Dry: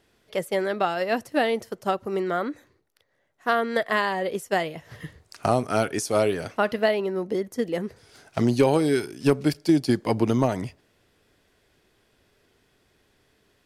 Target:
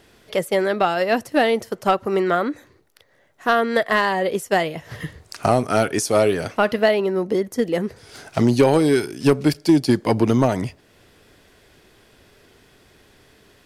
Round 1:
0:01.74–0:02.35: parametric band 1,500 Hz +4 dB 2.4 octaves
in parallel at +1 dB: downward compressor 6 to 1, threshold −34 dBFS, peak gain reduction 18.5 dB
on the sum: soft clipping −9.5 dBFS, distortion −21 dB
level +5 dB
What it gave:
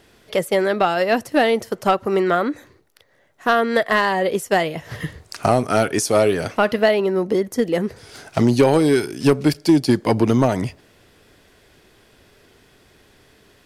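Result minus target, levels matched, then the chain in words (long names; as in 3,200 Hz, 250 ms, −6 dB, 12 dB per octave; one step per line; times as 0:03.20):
downward compressor: peak gain reduction −9.5 dB
0:01.74–0:02.35: parametric band 1,500 Hz +4 dB 2.4 octaves
in parallel at +1 dB: downward compressor 6 to 1, threshold −45.5 dBFS, peak gain reduction 28 dB
on the sum: soft clipping −9.5 dBFS, distortion −22 dB
level +5 dB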